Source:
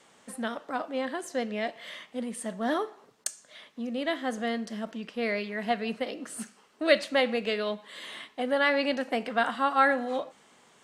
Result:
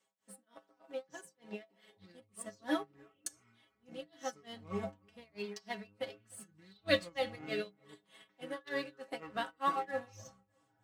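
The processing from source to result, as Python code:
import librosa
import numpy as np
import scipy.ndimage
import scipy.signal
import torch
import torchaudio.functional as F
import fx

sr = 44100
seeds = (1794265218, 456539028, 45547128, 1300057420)

p1 = x * (1.0 - 0.99 / 2.0 + 0.99 / 2.0 * np.cos(2.0 * np.pi * 3.3 * (np.arange(len(x)) / sr)))
p2 = fx.echo_pitch(p1, sr, ms=674, semitones=-7, count=3, db_per_echo=-6.0)
p3 = fx.stiff_resonator(p2, sr, f0_hz=97.0, decay_s=0.26, stiffness=0.008)
p4 = np.sign(p3) * np.maximum(np.abs(p3) - 10.0 ** (-49.5 / 20.0), 0.0)
p5 = p3 + F.gain(torch.from_numpy(p4), -5.0).numpy()
p6 = scipy.signal.sosfilt(scipy.signal.butter(2, 48.0, 'highpass', fs=sr, output='sos'), p5)
p7 = fx.high_shelf(p6, sr, hz=7600.0, db=6.5)
p8 = fx.echo_bbd(p7, sr, ms=305, stages=4096, feedback_pct=42, wet_db=-23.0)
p9 = fx.upward_expand(p8, sr, threshold_db=-55.0, expansion=1.5)
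y = F.gain(torch.from_numpy(p9), 3.0).numpy()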